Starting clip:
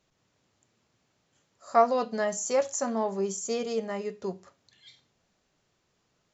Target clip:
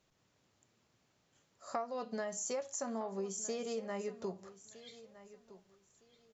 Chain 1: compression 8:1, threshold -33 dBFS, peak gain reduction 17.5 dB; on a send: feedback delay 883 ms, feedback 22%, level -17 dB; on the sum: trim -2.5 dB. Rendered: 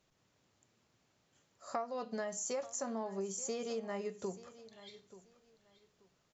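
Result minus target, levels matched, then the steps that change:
echo 379 ms early
change: feedback delay 1262 ms, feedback 22%, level -17 dB

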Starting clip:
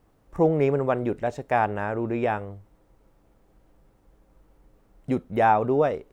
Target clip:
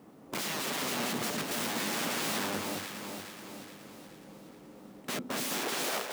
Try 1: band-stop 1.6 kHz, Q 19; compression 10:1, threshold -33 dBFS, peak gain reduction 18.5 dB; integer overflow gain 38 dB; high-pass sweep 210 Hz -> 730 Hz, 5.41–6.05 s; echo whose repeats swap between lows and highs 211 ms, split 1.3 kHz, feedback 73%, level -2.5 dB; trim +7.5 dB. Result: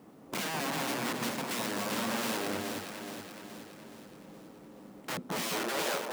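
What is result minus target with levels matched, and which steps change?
compression: peak gain reduction +6.5 dB
change: compression 10:1, threshold -26 dBFS, peak gain reduction 12 dB

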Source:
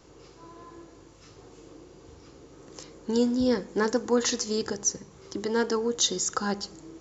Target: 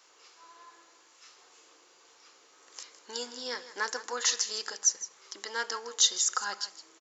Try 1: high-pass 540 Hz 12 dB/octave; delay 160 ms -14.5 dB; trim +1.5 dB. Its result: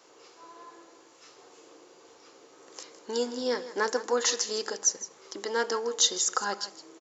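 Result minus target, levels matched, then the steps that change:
500 Hz band +10.5 dB
change: high-pass 1.2 kHz 12 dB/octave

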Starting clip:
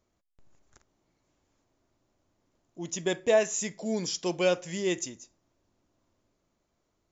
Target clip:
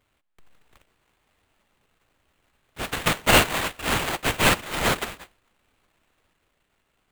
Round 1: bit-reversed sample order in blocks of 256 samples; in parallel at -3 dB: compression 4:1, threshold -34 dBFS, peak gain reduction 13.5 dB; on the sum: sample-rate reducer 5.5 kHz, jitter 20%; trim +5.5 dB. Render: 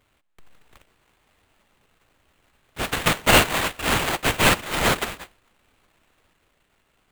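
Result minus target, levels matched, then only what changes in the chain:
compression: peak gain reduction +13.5 dB
remove: compression 4:1, threshold -34 dBFS, peak gain reduction 13.5 dB

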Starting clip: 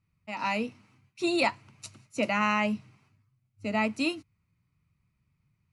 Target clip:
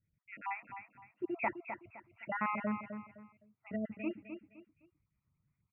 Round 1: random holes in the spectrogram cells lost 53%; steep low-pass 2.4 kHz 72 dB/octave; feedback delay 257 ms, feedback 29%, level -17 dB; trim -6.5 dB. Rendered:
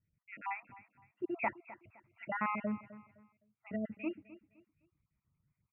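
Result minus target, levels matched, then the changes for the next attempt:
echo-to-direct -8.5 dB
change: feedback delay 257 ms, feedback 29%, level -8.5 dB

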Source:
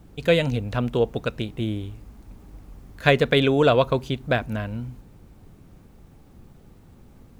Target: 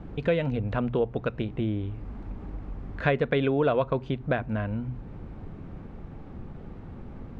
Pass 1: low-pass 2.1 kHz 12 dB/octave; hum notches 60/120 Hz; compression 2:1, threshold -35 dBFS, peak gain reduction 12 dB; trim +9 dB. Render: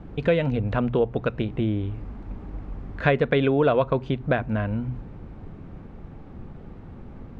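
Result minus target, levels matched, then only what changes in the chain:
compression: peak gain reduction -4 dB
change: compression 2:1, threshold -42.5 dBFS, peak gain reduction 16 dB

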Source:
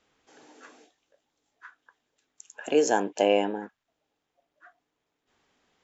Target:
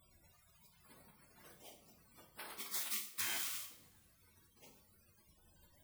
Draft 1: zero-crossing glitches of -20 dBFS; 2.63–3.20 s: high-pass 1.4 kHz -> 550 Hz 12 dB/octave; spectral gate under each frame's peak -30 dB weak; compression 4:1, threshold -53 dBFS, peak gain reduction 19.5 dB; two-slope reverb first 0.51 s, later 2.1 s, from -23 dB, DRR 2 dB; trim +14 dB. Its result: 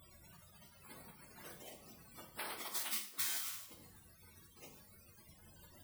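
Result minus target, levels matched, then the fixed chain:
zero-crossing glitches: distortion +7 dB
zero-crossing glitches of -27.5 dBFS; 2.63–3.20 s: high-pass 1.4 kHz -> 550 Hz 12 dB/octave; spectral gate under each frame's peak -30 dB weak; compression 4:1, threshold -53 dBFS, peak gain reduction 14.5 dB; two-slope reverb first 0.51 s, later 2.1 s, from -23 dB, DRR 2 dB; trim +14 dB

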